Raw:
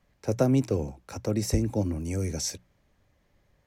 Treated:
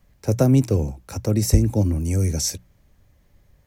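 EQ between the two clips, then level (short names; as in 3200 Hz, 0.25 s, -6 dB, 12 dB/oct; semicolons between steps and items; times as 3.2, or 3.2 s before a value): low shelf 170 Hz +10.5 dB; high shelf 7700 Hz +12 dB; +2.5 dB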